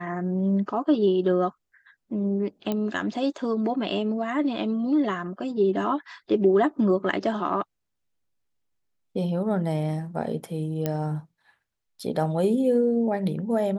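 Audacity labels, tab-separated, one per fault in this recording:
2.720000	2.720000	pop -15 dBFS
10.860000	10.860000	pop -13 dBFS

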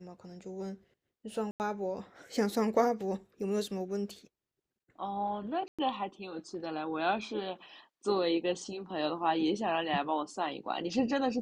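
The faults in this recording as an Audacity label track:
1.510000	1.600000	gap 89 ms
5.680000	5.790000	gap 0.106 s

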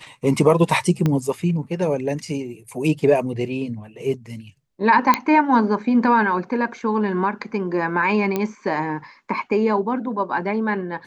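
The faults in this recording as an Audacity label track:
1.060000	1.060000	pop -9 dBFS
5.140000	5.140000	pop -3 dBFS
8.360000	8.360000	pop -9 dBFS

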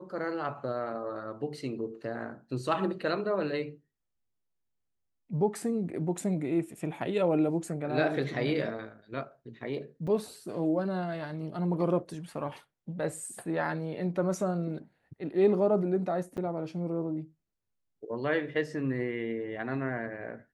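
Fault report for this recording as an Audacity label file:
10.070000	10.080000	gap 5.3 ms
16.370000	16.380000	gap 8.1 ms

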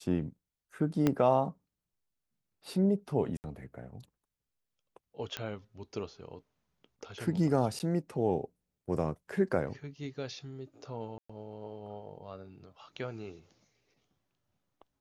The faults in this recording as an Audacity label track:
1.070000	1.070000	pop -14 dBFS
3.370000	3.440000	gap 69 ms
5.370000	5.370000	pop -19 dBFS
7.790000	7.800000	gap 9.4 ms
11.180000	11.290000	gap 0.115 s

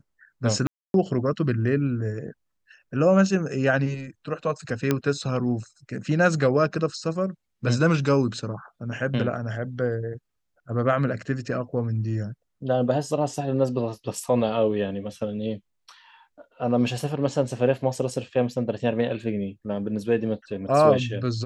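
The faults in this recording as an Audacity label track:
0.670000	0.940000	gap 0.272 s
4.910000	4.910000	pop -8 dBFS

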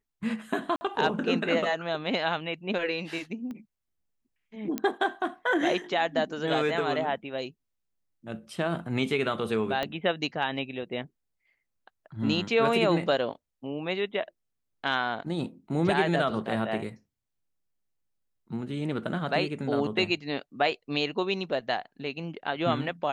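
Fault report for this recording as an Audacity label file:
0.760000	0.810000	gap 50 ms
3.510000	3.510000	pop -28 dBFS
4.780000	4.780000	pop -14 dBFS
9.830000	9.830000	pop -16 dBFS

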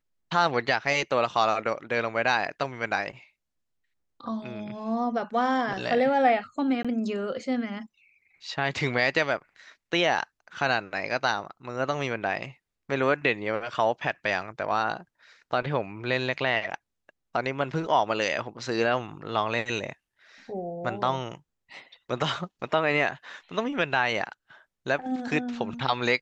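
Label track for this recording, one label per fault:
6.830000	6.850000	gap 16 ms

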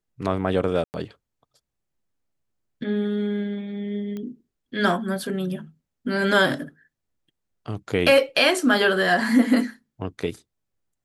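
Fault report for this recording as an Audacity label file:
0.840000	0.940000	gap 99 ms
4.170000	4.170000	pop -22 dBFS

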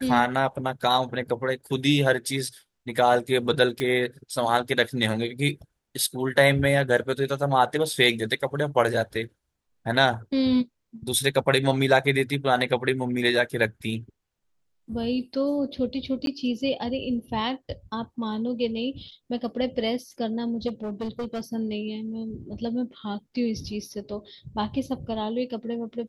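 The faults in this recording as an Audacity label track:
3.800000	3.800000	pop -14 dBFS
16.260000	16.270000	gap 12 ms
20.670000	21.410000	clipped -26.5 dBFS

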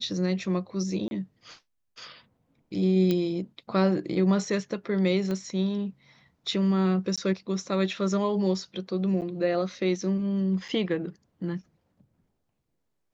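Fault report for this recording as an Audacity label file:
1.080000	1.110000	gap 31 ms
3.110000	3.110000	pop -14 dBFS
5.310000	5.310000	pop -20 dBFS
7.160000	7.180000	gap 16 ms
9.210000	9.220000	gap 8.4 ms
10.680000	10.690000	gap 5.9 ms

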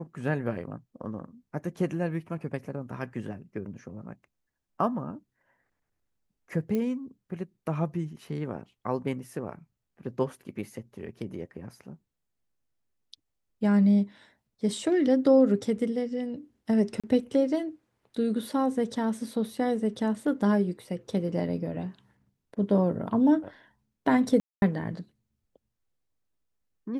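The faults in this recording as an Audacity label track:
6.750000	6.750000	pop -19 dBFS
17.000000	17.040000	gap 36 ms
24.400000	24.620000	gap 0.221 s

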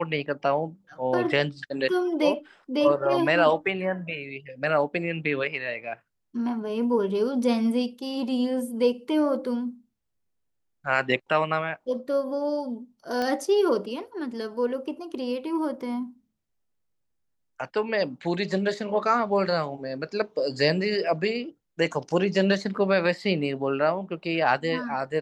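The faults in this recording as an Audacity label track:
13.220000	13.220000	pop -16 dBFS

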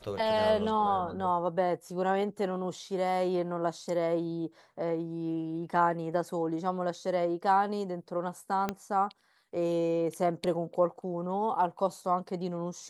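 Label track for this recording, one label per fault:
8.690000	8.690000	pop -16 dBFS

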